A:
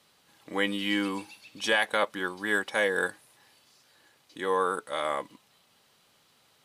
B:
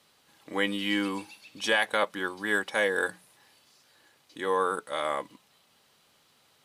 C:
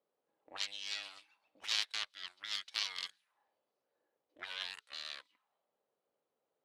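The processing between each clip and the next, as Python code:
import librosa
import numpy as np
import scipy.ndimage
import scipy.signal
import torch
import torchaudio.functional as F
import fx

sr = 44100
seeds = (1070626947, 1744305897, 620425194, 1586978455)

y1 = fx.hum_notches(x, sr, base_hz=60, count=3)
y2 = fx.cheby_harmonics(y1, sr, harmonics=(3, 8), levels_db=(-8, -21), full_scale_db=-11.0)
y2 = fx.auto_wah(y2, sr, base_hz=480.0, top_hz=4000.0, q=2.1, full_db=-38.0, direction='up')
y2 = y2 * librosa.db_to_amplitude(3.0)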